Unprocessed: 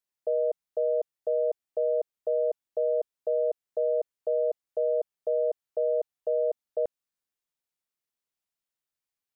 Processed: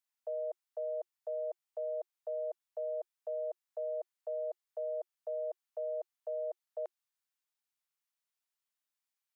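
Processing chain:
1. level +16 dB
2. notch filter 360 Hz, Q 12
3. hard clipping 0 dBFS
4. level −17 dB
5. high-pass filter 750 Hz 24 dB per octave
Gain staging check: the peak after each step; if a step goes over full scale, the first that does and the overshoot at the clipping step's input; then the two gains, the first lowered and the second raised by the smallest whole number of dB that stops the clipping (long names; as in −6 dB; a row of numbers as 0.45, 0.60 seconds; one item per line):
−3.5, −3.5, −3.5, −20.5, −31.0 dBFS
no step passes full scale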